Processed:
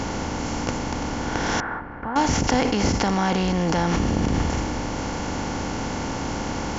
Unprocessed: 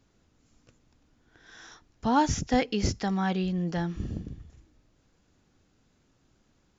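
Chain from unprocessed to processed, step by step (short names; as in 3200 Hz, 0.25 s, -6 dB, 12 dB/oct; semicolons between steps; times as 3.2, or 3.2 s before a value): per-bin compression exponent 0.4; in parallel at +1 dB: negative-ratio compressor -29 dBFS, ratio -0.5; 1.6–2.16 on the sum: ladder low-pass 1800 Hz, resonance 55%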